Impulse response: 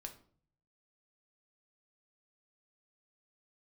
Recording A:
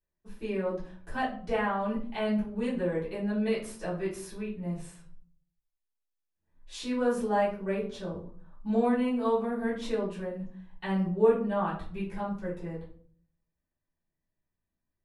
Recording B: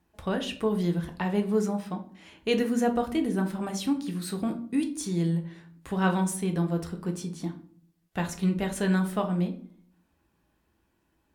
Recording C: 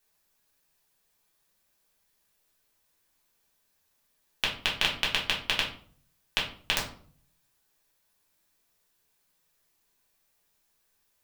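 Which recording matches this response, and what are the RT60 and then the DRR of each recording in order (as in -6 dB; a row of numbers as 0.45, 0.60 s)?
B; 0.50, 0.50, 0.50 s; -11.0, 4.0, -5.0 dB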